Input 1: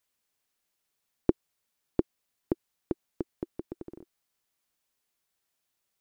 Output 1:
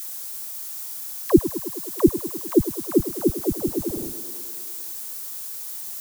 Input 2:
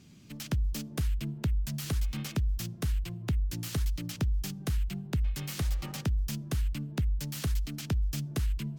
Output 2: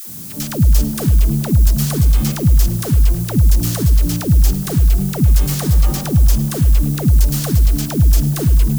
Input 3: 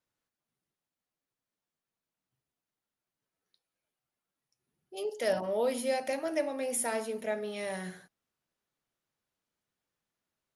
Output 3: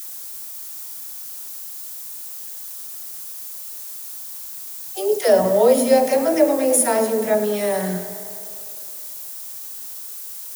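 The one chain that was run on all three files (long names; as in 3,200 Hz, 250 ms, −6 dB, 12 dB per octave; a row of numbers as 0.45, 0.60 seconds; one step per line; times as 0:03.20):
in parallel at −4 dB: wave folding −18 dBFS
on the sum: background noise blue −45 dBFS
parametric band 2,500 Hz −9.5 dB 1.8 octaves
all-pass dispersion lows, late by 95 ms, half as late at 410 Hz
tape delay 104 ms, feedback 79%, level −12.5 dB, low-pass 5,800 Hz
normalise the peak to −1.5 dBFS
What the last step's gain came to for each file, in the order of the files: +12.0, +14.0, +11.5 decibels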